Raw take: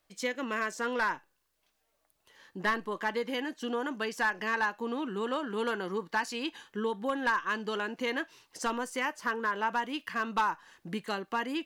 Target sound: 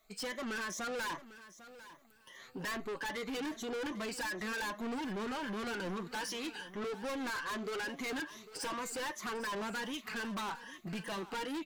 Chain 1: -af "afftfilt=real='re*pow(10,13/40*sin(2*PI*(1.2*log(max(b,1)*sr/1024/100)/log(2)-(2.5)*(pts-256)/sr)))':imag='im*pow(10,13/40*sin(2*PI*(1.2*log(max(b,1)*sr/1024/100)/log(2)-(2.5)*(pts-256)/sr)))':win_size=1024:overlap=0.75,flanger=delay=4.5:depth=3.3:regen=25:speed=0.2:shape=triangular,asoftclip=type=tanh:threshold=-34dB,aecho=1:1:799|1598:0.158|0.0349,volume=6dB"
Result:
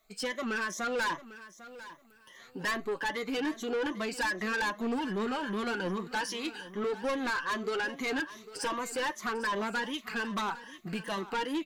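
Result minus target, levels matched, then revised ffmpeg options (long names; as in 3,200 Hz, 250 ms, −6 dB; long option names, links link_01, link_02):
soft clipping: distortion −4 dB
-af "afftfilt=real='re*pow(10,13/40*sin(2*PI*(1.2*log(max(b,1)*sr/1024/100)/log(2)-(2.5)*(pts-256)/sr)))':imag='im*pow(10,13/40*sin(2*PI*(1.2*log(max(b,1)*sr/1024/100)/log(2)-(2.5)*(pts-256)/sr)))':win_size=1024:overlap=0.75,flanger=delay=4.5:depth=3.3:regen=25:speed=0.2:shape=triangular,asoftclip=type=tanh:threshold=-42.5dB,aecho=1:1:799|1598:0.158|0.0349,volume=6dB"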